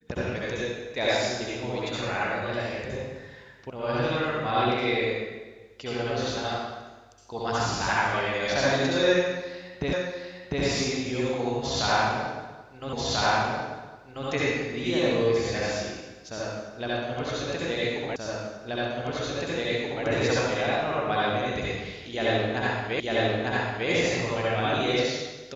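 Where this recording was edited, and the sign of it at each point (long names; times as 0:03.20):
0:03.70: cut off before it has died away
0:09.93: the same again, the last 0.7 s
0:12.93: the same again, the last 1.34 s
0:18.16: the same again, the last 1.88 s
0:23.00: the same again, the last 0.9 s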